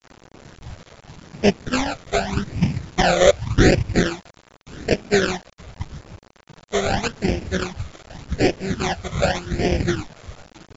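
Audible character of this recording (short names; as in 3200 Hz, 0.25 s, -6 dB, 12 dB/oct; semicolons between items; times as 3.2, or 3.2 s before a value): aliases and images of a low sample rate 1100 Hz, jitter 20%; phasing stages 12, 0.85 Hz, lowest notch 270–1300 Hz; a quantiser's noise floor 8-bit, dither none; MP2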